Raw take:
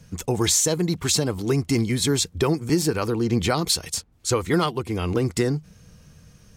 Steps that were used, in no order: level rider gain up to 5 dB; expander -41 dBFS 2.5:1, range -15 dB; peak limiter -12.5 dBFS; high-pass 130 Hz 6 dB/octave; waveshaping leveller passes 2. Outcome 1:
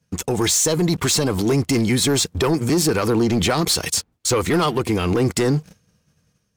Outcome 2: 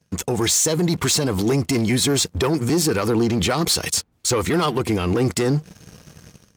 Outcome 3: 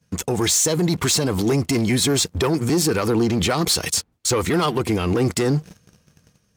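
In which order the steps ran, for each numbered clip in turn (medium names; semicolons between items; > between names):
high-pass > expander > level rider > waveshaping leveller > peak limiter; level rider > waveshaping leveller > expander > high-pass > peak limiter; expander > level rider > waveshaping leveller > high-pass > peak limiter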